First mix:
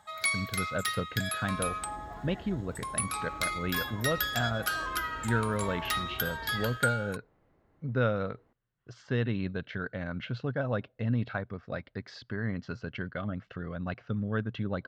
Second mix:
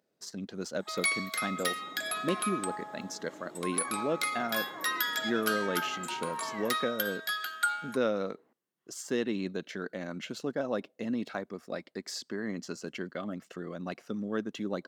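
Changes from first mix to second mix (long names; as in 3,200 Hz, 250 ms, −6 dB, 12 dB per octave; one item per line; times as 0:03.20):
speech: remove loudspeaker in its box 120–3,800 Hz, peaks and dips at 120 Hz +10 dB, 340 Hz −7 dB, 1,500 Hz +6 dB
first sound: entry +0.80 s
master: add high-pass filter 190 Hz 24 dB per octave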